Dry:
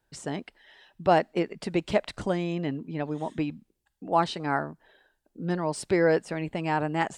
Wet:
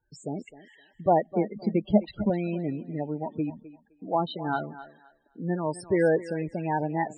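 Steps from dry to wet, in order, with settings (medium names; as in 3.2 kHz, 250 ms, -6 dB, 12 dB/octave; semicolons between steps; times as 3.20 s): loudest bins only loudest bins 16; 1.32–2.30 s: peaking EQ 210 Hz +12.5 dB 0.28 oct; 3.23–4.27 s: low-pass that closes with the level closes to 810 Hz, closed at -22 dBFS; thinning echo 258 ms, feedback 22%, high-pass 350 Hz, level -14 dB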